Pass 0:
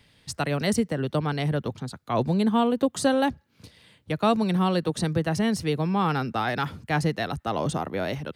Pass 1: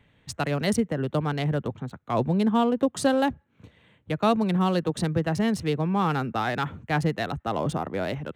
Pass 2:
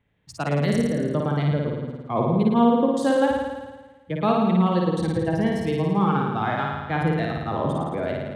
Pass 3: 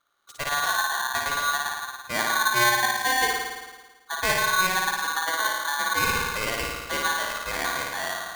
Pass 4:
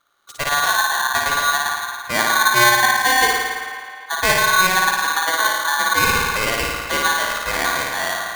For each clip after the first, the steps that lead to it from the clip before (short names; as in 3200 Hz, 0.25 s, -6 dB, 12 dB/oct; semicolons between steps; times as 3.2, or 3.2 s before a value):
Wiener smoothing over 9 samples
spectral noise reduction 10 dB; high shelf 3700 Hz -10 dB; flutter echo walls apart 9.5 m, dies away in 1.3 s
polarity switched at an audio rate 1300 Hz; gain -3.5 dB
band-limited delay 0.26 s, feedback 52%, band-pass 1400 Hz, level -11 dB; gain +7 dB